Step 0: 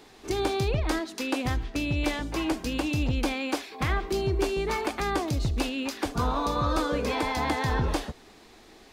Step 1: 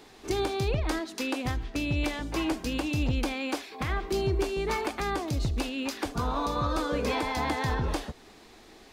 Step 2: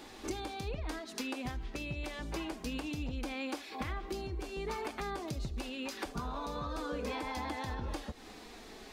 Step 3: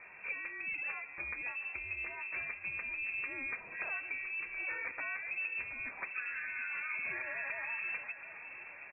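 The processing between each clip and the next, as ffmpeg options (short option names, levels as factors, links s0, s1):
-af "alimiter=limit=0.126:level=0:latency=1:release=308"
-af "acompressor=threshold=0.0126:ratio=6,flanger=delay=3.5:depth=1.8:regen=-46:speed=0.26:shape=sinusoidal,volume=2"
-af "lowpass=f=2300:t=q:w=0.5098,lowpass=f=2300:t=q:w=0.6013,lowpass=f=2300:t=q:w=0.9,lowpass=f=2300:t=q:w=2.563,afreqshift=-2700,aecho=1:1:725|1450|2175|2900|3625|4350:0.224|0.13|0.0753|0.0437|0.0253|0.0147,volume=0.841"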